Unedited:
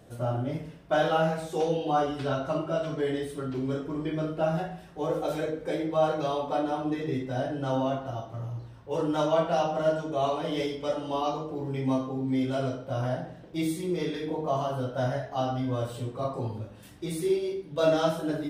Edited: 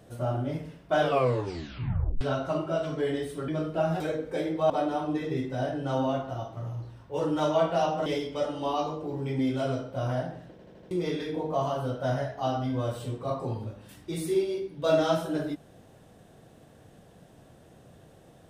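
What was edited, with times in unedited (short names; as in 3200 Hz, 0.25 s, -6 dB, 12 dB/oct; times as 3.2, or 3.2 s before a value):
1 tape stop 1.21 s
3.48–4.11 cut
4.63–5.34 cut
6.04–6.47 cut
9.83–10.54 cut
11.87–12.33 cut
13.45 stutter in place 0.08 s, 5 plays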